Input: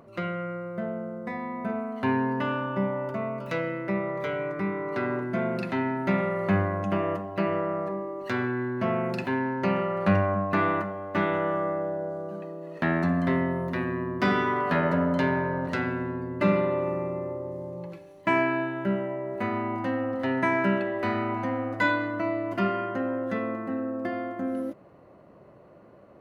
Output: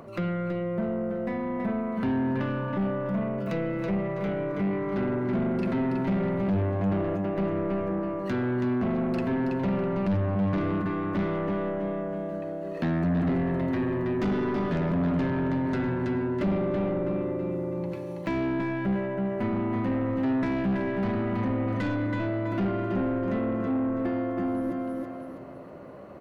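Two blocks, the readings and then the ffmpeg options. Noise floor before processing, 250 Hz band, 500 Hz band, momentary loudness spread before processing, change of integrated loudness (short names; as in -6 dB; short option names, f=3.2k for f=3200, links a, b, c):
-52 dBFS, +2.5 dB, -1.5 dB, 9 LU, 0.0 dB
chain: -filter_complex "[0:a]asplit=2[a][b];[b]aecho=0:1:326|652|978|1304:0.501|0.175|0.0614|0.0215[c];[a][c]amix=inputs=2:normalize=0,aeval=exprs='0.316*(cos(1*acos(clip(val(0)/0.316,-1,1)))-cos(1*PI/2))+0.0794*(cos(5*acos(clip(val(0)/0.316,-1,1)))-cos(5*PI/2))+0.0112*(cos(8*acos(clip(val(0)/0.316,-1,1)))-cos(8*PI/2))':c=same,acrossover=split=390[d][e];[e]acompressor=threshold=-35dB:ratio=4[f];[d][f]amix=inputs=2:normalize=0,asoftclip=type=tanh:threshold=-21.5dB"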